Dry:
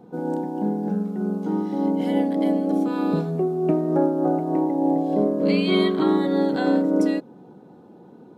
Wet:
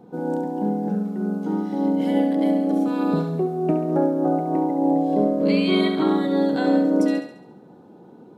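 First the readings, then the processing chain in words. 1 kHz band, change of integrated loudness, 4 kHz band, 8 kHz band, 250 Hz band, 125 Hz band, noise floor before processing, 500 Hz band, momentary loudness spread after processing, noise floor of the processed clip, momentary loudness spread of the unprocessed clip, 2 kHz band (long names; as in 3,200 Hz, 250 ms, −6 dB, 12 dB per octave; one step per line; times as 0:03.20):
+1.5 dB, +0.5 dB, +0.5 dB, can't be measured, +1.0 dB, 0.0 dB, −48 dBFS, 0.0 dB, 6 LU, −47 dBFS, 6 LU, +1.0 dB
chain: feedback echo with a high-pass in the loop 69 ms, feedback 52%, high-pass 370 Hz, level −8 dB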